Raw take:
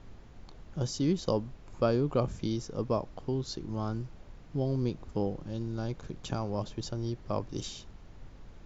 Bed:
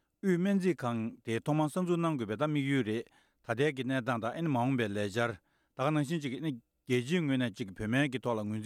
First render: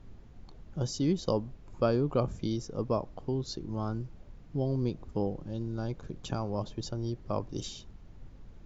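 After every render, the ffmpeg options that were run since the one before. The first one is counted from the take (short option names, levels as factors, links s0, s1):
-af "afftdn=nr=6:nf=-52"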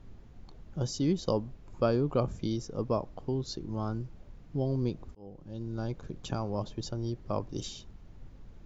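-filter_complex "[0:a]asplit=2[s0][s1];[s0]atrim=end=5.15,asetpts=PTS-STARTPTS,afade=t=out:st=5.146:d=0.004:c=hsin[s2];[s1]atrim=start=5.15,asetpts=PTS-STARTPTS,afade=t=in:d=0.65[s3];[s2][s3]concat=n=2:v=0:a=1"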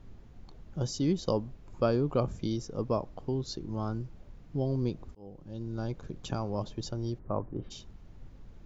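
-filter_complex "[0:a]asplit=3[s0][s1][s2];[s0]afade=t=out:st=7.18:d=0.02[s3];[s1]lowpass=f=1700:w=0.5412,lowpass=f=1700:w=1.3066,afade=t=in:st=7.18:d=0.02,afade=t=out:st=7.7:d=0.02[s4];[s2]afade=t=in:st=7.7:d=0.02[s5];[s3][s4][s5]amix=inputs=3:normalize=0"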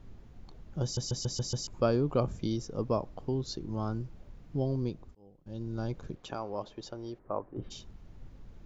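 -filter_complex "[0:a]asettb=1/sr,asplit=3[s0][s1][s2];[s0]atrim=end=6.154[s3];[s1]atrim=start=6.15:end=7.57,asetpts=PTS-STARTPTS,afade=t=in:d=0.004:c=qsin,afade=t=out:st=1.416:d=0.004:c=qsin,bass=f=250:g=-14,treble=f=4000:g=-8[s4];[s2]atrim=start=7.566[s5];[s3][s4]acrossfade=d=0.004:c1=hsin:c2=qsin[s6];[s6][s5]acrossfade=d=0.004:c1=qsin:c2=hsin,asplit=8[s7][s8][s9][s10][s11][s12][s13][s14];[s7]atrim=end=0.972[s15];[s8]atrim=start=0.828:end=0.972[s16];[s9]atrim=start=0.828:end=0.972[s17];[s10]atrim=start=0.828:end=0.972[s18];[s11]atrim=start=0.828:end=0.972[s19];[s12]atrim=start=0.828:end=0.972[s20];[s13]atrim=start=1.668:end=5.46,asetpts=PTS-STARTPTS,afade=t=out:st=2.952:d=0.84:silence=0.141254[s21];[s14]atrim=start=5.46,asetpts=PTS-STARTPTS,afade=t=in:d=0.004:c=hsin:silence=0.141254[s22];[s15][s16]acrossfade=d=0.004:c1=hsin:c2=hsin[s23];[s23][s17]acrossfade=d=0.004:c1=hsin:c2=hsin[s24];[s24][s18]acrossfade=d=0.004:c1=hsin:c2=hsin[s25];[s25][s19]acrossfade=d=0.004:c1=hsin:c2=hsin[s26];[s26][s20]acrossfade=d=0.004:c1=hsin:c2=hsin[s27];[s21][s22]concat=n=2:v=0:a=1[s28];[s27][s28]acrossfade=d=0.004:c1=hsin:c2=hsin"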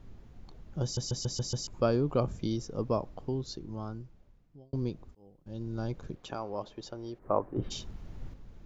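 -filter_complex "[0:a]asettb=1/sr,asplit=3[s0][s1][s2];[s0]atrim=end=7.224[s3];[s1]atrim=start=7.22:end=8.34,asetpts=PTS-STARTPTS,afade=t=in:d=0.004:c=qsin,afade=t=out:st=1.116:d=0.004:c=qsin,acontrast=63[s4];[s2]atrim=start=8.336[s5];[s3][s4]acrossfade=d=0.004:c1=hsin:c2=qsin[s6];[s6][s5]acrossfade=d=0.004:c1=qsin:c2=hsin,asplit=2[s7][s8];[s7]atrim=end=4.73,asetpts=PTS-STARTPTS,afade=t=out:st=3.1:d=1.63[s9];[s8]atrim=start=4.73,asetpts=PTS-STARTPTS,afade=t=in:d=0.004:c=hsin[s10];[s9][s10]concat=n=2:v=0:a=1"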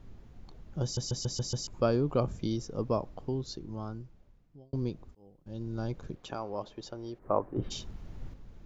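-af anull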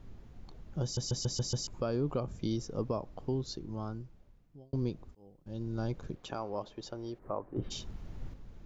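-af "alimiter=limit=0.0708:level=0:latency=1:release=323"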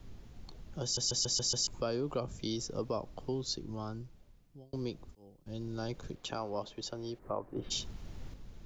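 -filter_complex "[0:a]acrossover=split=290|530|2700[s0][s1][s2][s3];[s0]alimiter=level_in=3.98:limit=0.0631:level=0:latency=1:release=143,volume=0.251[s4];[s3]acontrast=86[s5];[s4][s1][s2][s5]amix=inputs=4:normalize=0"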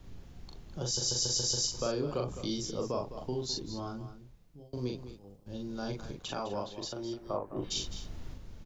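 -filter_complex "[0:a]asplit=2[s0][s1];[s1]adelay=40,volume=0.708[s2];[s0][s2]amix=inputs=2:normalize=0,aecho=1:1:208:0.251"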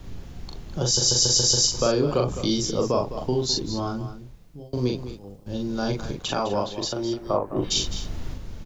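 -af "volume=3.55"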